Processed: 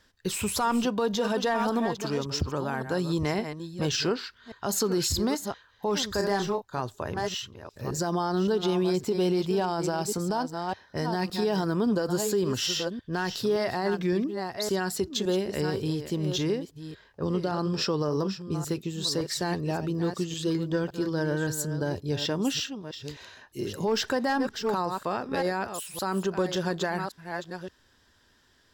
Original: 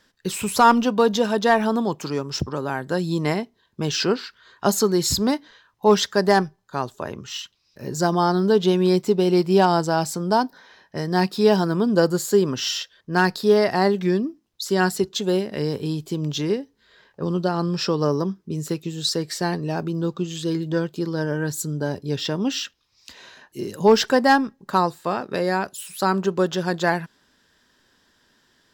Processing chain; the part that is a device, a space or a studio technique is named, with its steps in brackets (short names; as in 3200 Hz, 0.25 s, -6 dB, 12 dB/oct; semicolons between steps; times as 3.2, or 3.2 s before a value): reverse delay 0.565 s, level -11 dB; car stereo with a boomy subwoofer (resonant low shelf 120 Hz +7 dB, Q 1.5; limiter -15.5 dBFS, peak gain reduction 11 dB); 6.16–6.8 doubler 30 ms -7 dB; gain -2.5 dB